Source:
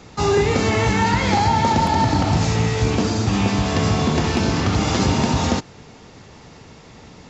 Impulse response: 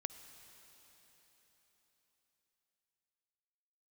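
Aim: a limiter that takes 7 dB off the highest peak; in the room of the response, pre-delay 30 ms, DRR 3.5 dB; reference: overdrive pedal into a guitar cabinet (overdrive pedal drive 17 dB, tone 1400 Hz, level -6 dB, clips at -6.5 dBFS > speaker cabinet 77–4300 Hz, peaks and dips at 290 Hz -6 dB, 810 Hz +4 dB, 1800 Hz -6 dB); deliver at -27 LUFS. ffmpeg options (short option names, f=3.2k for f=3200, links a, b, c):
-filter_complex "[0:a]alimiter=limit=-11.5dB:level=0:latency=1,asplit=2[a][b];[1:a]atrim=start_sample=2205,adelay=30[c];[b][c]afir=irnorm=-1:irlink=0,volume=-1.5dB[d];[a][d]amix=inputs=2:normalize=0,asplit=2[e][f];[f]highpass=f=720:p=1,volume=17dB,asoftclip=type=tanh:threshold=-6.5dB[g];[e][g]amix=inputs=2:normalize=0,lowpass=f=1.4k:p=1,volume=-6dB,highpass=77,equalizer=f=290:t=q:w=4:g=-6,equalizer=f=810:t=q:w=4:g=4,equalizer=f=1.8k:t=q:w=4:g=-6,lowpass=f=4.3k:w=0.5412,lowpass=f=4.3k:w=1.3066,volume=-10dB"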